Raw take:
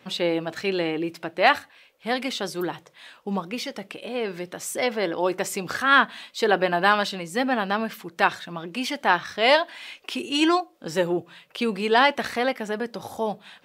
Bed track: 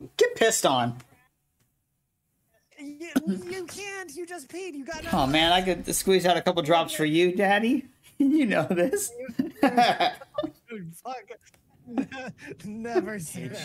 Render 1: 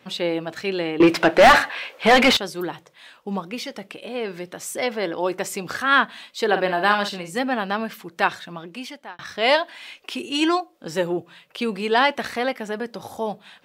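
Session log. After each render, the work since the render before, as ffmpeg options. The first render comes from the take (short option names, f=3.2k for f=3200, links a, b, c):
-filter_complex "[0:a]asettb=1/sr,asplit=3[a][b][c];[a]atrim=end=1.004[d];[b]atrim=start=1:end=2.37,asetpts=PTS-STARTPTS,afade=t=in:d=0.004:c=qsin,afade=t=out:st=1.366:d=0.004:c=qsin,asplit=2[e][f];[f]highpass=f=720:p=1,volume=32dB,asoftclip=type=tanh:threshold=-2.5dB[g];[e][g]amix=inputs=2:normalize=0,lowpass=f=1.9k:p=1,volume=-6dB[h];[c]atrim=start=2.366[i];[d][h]acrossfade=d=0.004:c1=hsin:c2=qsin[j];[j][i]acrossfade=d=0.004:c1=qsin:c2=hsin,asettb=1/sr,asplit=3[k][l][m];[k]atrim=end=6.474[n];[l]atrim=start=6.47:end=7.39,asetpts=PTS-STARTPTS,afade=t=in:d=0.004:c=qsin,afade=t=out:st=0.916:d=0.004:c=qsin,asplit=2[o][p];[p]adelay=49,volume=-8.5dB[q];[o][q]amix=inputs=2:normalize=0,atrim=end_sample=40572[r];[m]atrim=start=7.386[s];[n][r]acrossfade=d=0.004:c1=hsin:c2=qsin[t];[t][s]acrossfade=d=0.004:c1=qsin:c2=hsin,asplit=2[u][v];[u]atrim=end=9.19,asetpts=PTS-STARTPTS,afade=t=out:st=8.46:d=0.73[w];[v]atrim=start=9.19,asetpts=PTS-STARTPTS,afade=t=in:d=0.004:c=hsin[x];[w][x]concat=n=2:v=0:a=1"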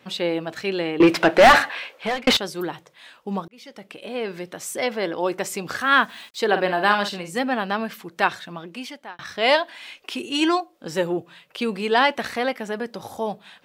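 -filter_complex "[0:a]asettb=1/sr,asplit=3[a][b][c];[a]atrim=end=5.814[d];[b]atrim=start=5.81:end=6.39,asetpts=PTS-STARTPTS,afade=t=in:d=0.004:c=qsin,afade=t=out:st=0.576:d=0.004:c=qsin,acrusher=bits=7:mix=0:aa=0.5[e];[c]atrim=start=6.386[f];[d][e]acrossfade=d=0.004:c1=hsin:c2=qsin[g];[g][f]acrossfade=d=0.004:c1=qsin:c2=hsin,asplit=3[h][i][j];[h]atrim=end=2.27,asetpts=PTS-STARTPTS,afade=t=out:st=1.74:d=0.53[k];[i]atrim=start=2.27:end=3.48,asetpts=PTS-STARTPTS,afade=t=in:d=0.004:c=hsin,afade=t=out:st=1.206:d=0.004:c=hsin[l];[j]atrim=start=3.48,asetpts=PTS-STARTPTS,afade=t=in:d=0.61[m];[k][l][m]concat=n=3:v=0:a=1"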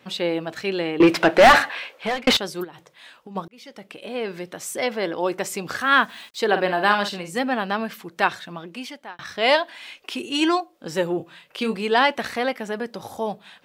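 -filter_complex "[0:a]asplit=3[a][b][c];[a]afade=t=out:st=2.63:d=0.02[d];[b]acompressor=threshold=-37dB:ratio=6:attack=3.2:release=140:knee=1:detection=peak,afade=t=in:st=2.63:d=0.02,afade=t=out:st=3.35:d=0.02[e];[c]afade=t=in:st=3.35:d=0.02[f];[d][e][f]amix=inputs=3:normalize=0,asettb=1/sr,asplit=3[g][h][i];[g]atrim=end=11.174[j];[h]atrim=start=11.17:end=11.75,asetpts=PTS-STARTPTS,afade=t=in:d=0.004:c=qsin,afade=t=out:st=0.576:d=0.004:c=qsin,asplit=2[k][l];[l]adelay=27,volume=-6dB[m];[k][m]amix=inputs=2:normalize=0,atrim=end_sample=25578[n];[i]atrim=start=11.746[o];[j][n]acrossfade=d=0.004:c1=hsin:c2=qsin[p];[p][o]acrossfade=d=0.004:c1=qsin:c2=hsin"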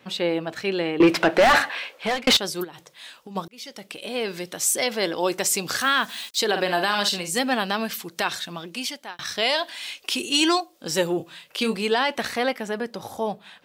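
-filter_complex "[0:a]acrossover=split=3500[a][b];[b]dynaudnorm=f=410:g=13:m=12dB[c];[a][c]amix=inputs=2:normalize=0,alimiter=limit=-9.5dB:level=0:latency=1:release=92"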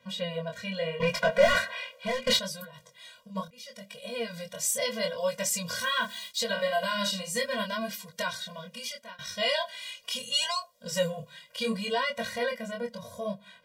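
-af "flanger=delay=20:depth=6.5:speed=0.75,afftfilt=real='re*eq(mod(floor(b*sr/1024/230),2),0)':imag='im*eq(mod(floor(b*sr/1024/230),2),0)':win_size=1024:overlap=0.75"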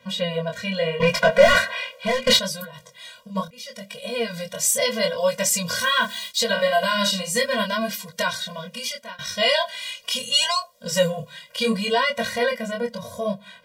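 -af "volume=8dB,alimiter=limit=-3dB:level=0:latency=1"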